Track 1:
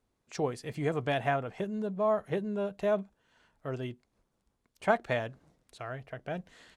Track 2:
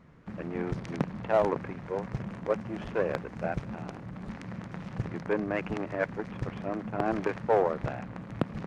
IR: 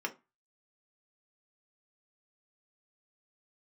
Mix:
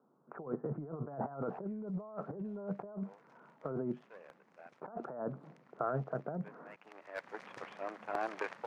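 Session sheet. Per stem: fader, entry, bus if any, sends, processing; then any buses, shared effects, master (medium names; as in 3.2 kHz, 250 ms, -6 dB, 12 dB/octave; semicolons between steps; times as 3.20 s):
+2.5 dB, 0.00 s, no send, Chebyshev band-pass 140–1400 Hz, order 5
-8.5 dB, 1.15 s, no send, high-pass 610 Hz 12 dB/octave; hard clipper -22 dBFS, distortion -16 dB; random flutter of the level, depth 50%; auto duck -17 dB, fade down 1.90 s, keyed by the first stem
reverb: none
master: compressor with a negative ratio -40 dBFS, ratio -1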